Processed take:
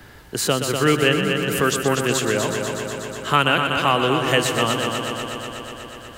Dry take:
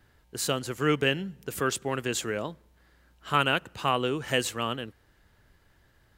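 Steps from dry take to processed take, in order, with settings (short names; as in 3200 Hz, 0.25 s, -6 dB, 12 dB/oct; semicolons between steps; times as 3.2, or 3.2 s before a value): multi-head echo 0.122 s, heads first and second, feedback 66%, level -9.5 dB; three-band squash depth 40%; gain +7.5 dB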